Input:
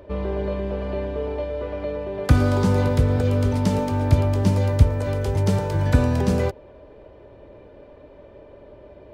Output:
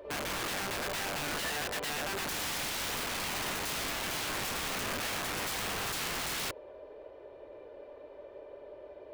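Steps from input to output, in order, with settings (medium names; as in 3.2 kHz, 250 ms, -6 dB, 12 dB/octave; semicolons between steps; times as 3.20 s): resonant low shelf 290 Hz -12.5 dB, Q 1.5; reverse echo 53 ms -14 dB; integer overflow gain 26 dB; trim -4.5 dB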